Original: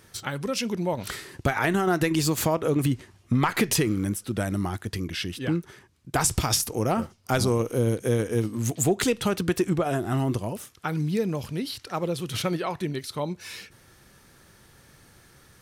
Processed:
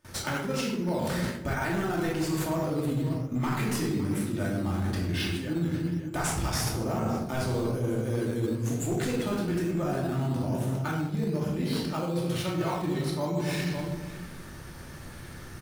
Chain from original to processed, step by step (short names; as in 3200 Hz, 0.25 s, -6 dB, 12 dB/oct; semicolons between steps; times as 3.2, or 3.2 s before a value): outdoor echo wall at 96 m, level -16 dB; shoebox room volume 550 m³, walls mixed, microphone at 2.6 m; in parallel at -5 dB: decimation with a swept rate 9×, swing 60% 1.1 Hz; on the sum: hard clip -6 dBFS, distortion -22 dB; reverse; compressor 10:1, threshold -26 dBFS, peak gain reduction 17.5 dB; reverse; gate with hold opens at -38 dBFS